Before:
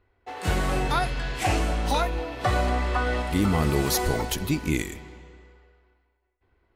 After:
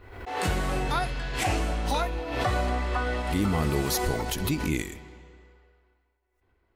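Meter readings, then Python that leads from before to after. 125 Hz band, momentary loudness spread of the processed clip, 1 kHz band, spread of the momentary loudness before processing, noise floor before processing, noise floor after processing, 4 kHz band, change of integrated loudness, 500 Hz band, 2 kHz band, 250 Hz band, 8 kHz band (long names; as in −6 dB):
−2.5 dB, 5 LU, −2.5 dB, 6 LU, −71 dBFS, −73 dBFS, −2.0 dB, −2.5 dB, −2.0 dB, −2.0 dB, −2.5 dB, −2.0 dB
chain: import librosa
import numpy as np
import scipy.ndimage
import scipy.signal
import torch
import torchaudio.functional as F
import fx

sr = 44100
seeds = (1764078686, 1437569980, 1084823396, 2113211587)

y = fx.pre_swell(x, sr, db_per_s=56.0)
y = F.gain(torch.from_numpy(y), -3.0).numpy()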